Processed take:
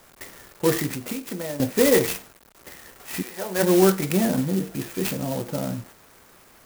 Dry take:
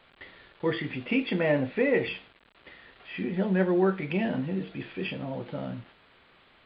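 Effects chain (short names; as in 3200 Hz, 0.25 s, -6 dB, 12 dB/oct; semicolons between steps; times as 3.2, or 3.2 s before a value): 0.89–1.6 compressor 12:1, threshold -35 dBFS, peak gain reduction 16 dB; 3.21–3.62 HPF 1200 Hz -> 430 Hz 12 dB/oct; 4.12–4.74 air absorption 200 m; clock jitter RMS 0.09 ms; gain +7 dB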